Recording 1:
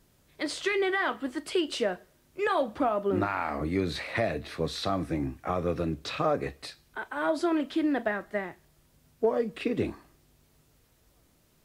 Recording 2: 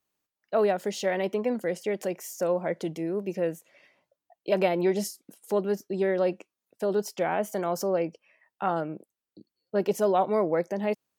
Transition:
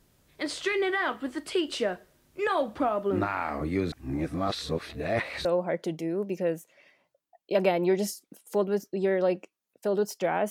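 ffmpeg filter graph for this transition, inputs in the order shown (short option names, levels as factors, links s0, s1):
-filter_complex "[0:a]apad=whole_dur=10.5,atrim=end=10.5,asplit=2[s0][s1];[s0]atrim=end=3.922[s2];[s1]atrim=start=3.918:end=5.452,asetpts=PTS-STARTPTS,areverse[s3];[1:a]atrim=start=2.418:end=7.47[s4];[s2][s3]acrossfade=d=0.004:c1=hsin:c2=hsin[s5];[s5][s4]acrossfade=d=0.004:c1=hsin:c2=hsin"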